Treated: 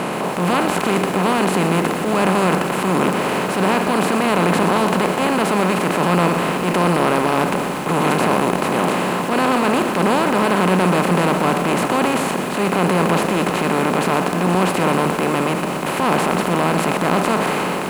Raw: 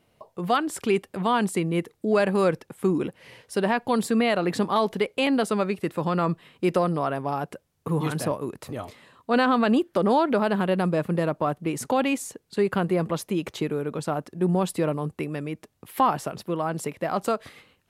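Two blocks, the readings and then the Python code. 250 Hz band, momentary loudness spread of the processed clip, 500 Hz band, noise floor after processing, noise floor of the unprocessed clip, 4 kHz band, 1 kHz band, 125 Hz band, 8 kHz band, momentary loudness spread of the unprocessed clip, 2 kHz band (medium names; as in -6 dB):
+7.0 dB, 3 LU, +6.5 dB, -23 dBFS, -69 dBFS, +10.5 dB, +9.5 dB, +7.5 dB, +10.5 dB, 10 LU, +11.0 dB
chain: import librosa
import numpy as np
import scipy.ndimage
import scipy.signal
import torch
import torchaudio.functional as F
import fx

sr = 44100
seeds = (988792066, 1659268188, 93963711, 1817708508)

y = fx.bin_compress(x, sr, power=0.2)
y = fx.peak_eq(y, sr, hz=180.0, db=7.5, octaves=0.22)
y = fx.transient(y, sr, attack_db=-7, sustain_db=3)
y = scipy.signal.sosfilt(scipy.signal.butter(2, 51.0, 'highpass', fs=sr, output='sos'), y)
y = fx.echo_crushed(y, sr, ms=121, feedback_pct=80, bits=5, wet_db=-10.5)
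y = y * librosa.db_to_amplitude(-4.0)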